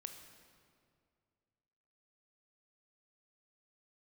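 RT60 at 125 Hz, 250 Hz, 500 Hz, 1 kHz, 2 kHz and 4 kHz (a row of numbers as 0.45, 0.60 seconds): 2.7, 2.4, 2.3, 2.1, 1.8, 1.5 seconds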